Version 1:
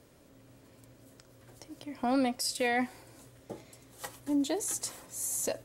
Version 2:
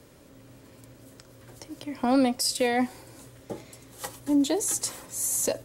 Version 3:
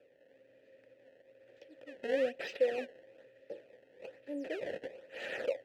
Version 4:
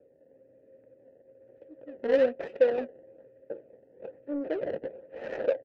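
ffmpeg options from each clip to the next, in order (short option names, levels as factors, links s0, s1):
-filter_complex "[0:a]bandreject=f=690:w=12,acrossover=split=310|1200|2900[s0][s1][s2][s3];[s2]alimiter=level_in=6.31:limit=0.0631:level=0:latency=1:release=460,volume=0.158[s4];[s0][s1][s4][s3]amix=inputs=4:normalize=0,volume=2.11"
-filter_complex "[0:a]acrusher=samples=21:mix=1:aa=0.000001:lfo=1:lforange=33.6:lforate=1.1,asplit=3[s0][s1][s2];[s0]bandpass=f=530:t=q:w=8,volume=1[s3];[s1]bandpass=f=1840:t=q:w=8,volume=0.501[s4];[s2]bandpass=f=2480:t=q:w=8,volume=0.355[s5];[s3][s4][s5]amix=inputs=3:normalize=0"
-filter_complex "[0:a]asplit=2[s0][s1];[s1]adelay=13,volume=0.2[s2];[s0][s2]amix=inputs=2:normalize=0,adynamicsmooth=sensitivity=2:basefreq=600,volume=2.66"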